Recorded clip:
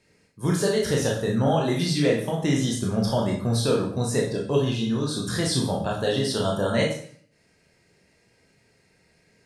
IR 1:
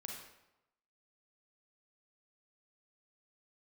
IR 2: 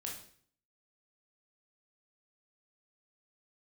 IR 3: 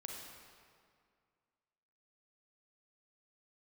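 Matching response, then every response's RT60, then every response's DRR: 2; 0.90 s, 0.55 s, 2.1 s; -0.5 dB, -2.0 dB, -0.5 dB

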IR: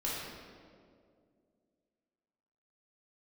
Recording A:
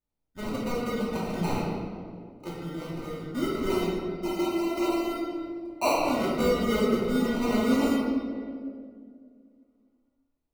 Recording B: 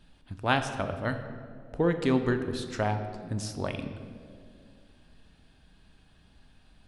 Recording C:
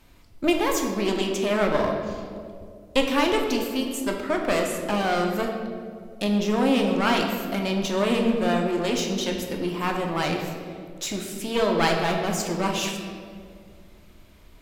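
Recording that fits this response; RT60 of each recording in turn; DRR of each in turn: A; 2.2 s, 2.3 s, 2.2 s; -7.5 dB, 7.0 dB, 1.5 dB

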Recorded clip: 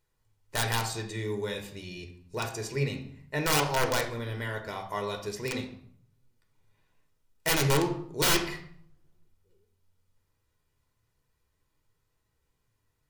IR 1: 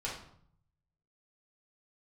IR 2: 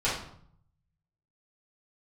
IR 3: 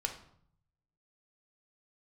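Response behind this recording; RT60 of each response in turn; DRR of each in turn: 3; 0.60 s, 0.60 s, 0.60 s; -6.0 dB, -10.5 dB, 3.5 dB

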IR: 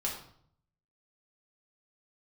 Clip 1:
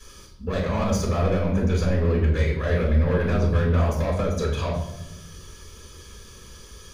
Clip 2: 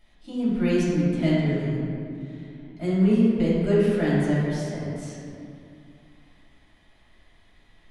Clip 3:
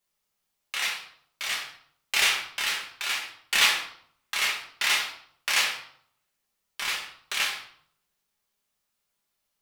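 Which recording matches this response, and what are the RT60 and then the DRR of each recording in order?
3; 0.90 s, 2.5 s, 0.60 s; -6.5 dB, -10.0 dB, -3.0 dB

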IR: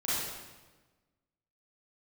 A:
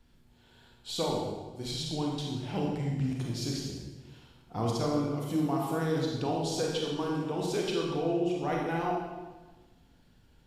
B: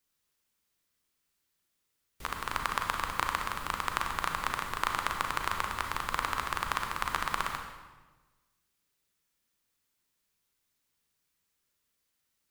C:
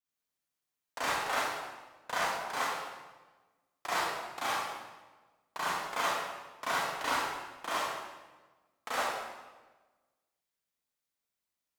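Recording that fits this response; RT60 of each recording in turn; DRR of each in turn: C; 1.3 s, 1.3 s, 1.3 s; -2.0 dB, 3.5 dB, -11.0 dB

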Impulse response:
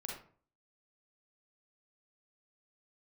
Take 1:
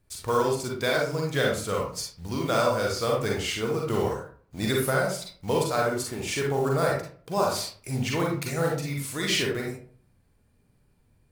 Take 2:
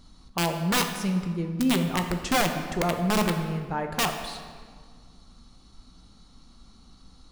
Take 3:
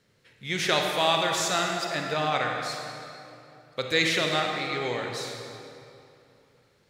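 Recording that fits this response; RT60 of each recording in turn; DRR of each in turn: 1; 0.45 s, 1.8 s, 2.8 s; -2.0 dB, 5.0 dB, 1.0 dB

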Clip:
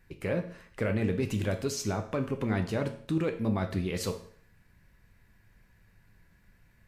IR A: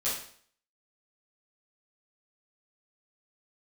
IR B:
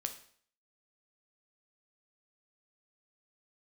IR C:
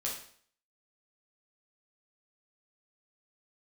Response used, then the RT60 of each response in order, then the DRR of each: B; 0.55 s, 0.55 s, 0.55 s; -11.0 dB, 6.0 dB, -4.0 dB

